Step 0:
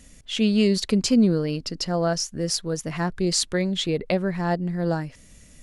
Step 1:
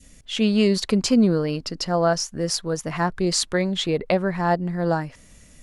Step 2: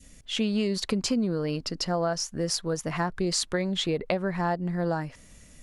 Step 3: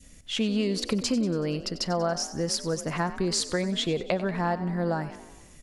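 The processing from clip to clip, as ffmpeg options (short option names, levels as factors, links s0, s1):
-af "adynamicequalizer=threshold=0.01:dfrequency=1000:dqfactor=0.83:tfrequency=1000:tqfactor=0.83:attack=5:release=100:ratio=0.375:range=3.5:mode=boostabove:tftype=bell"
-af "acompressor=threshold=0.0891:ratio=6,volume=0.794"
-filter_complex "[0:a]asplit=7[s0][s1][s2][s3][s4][s5][s6];[s1]adelay=94,afreqshift=42,volume=0.188[s7];[s2]adelay=188,afreqshift=84,volume=0.107[s8];[s3]adelay=282,afreqshift=126,volume=0.061[s9];[s4]adelay=376,afreqshift=168,volume=0.0351[s10];[s5]adelay=470,afreqshift=210,volume=0.02[s11];[s6]adelay=564,afreqshift=252,volume=0.0114[s12];[s0][s7][s8][s9][s10][s11][s12]amix=inputs=7:normalize=0"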